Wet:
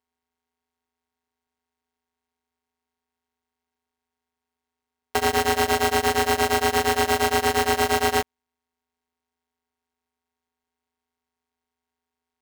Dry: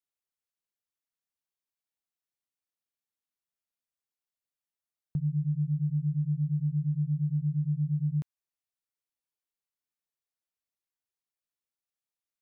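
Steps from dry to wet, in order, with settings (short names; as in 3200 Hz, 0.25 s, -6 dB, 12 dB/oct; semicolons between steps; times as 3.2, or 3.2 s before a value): sample sorter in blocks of 256 samples; polarity switched at an audio rate 590 Hz; gain +7 dB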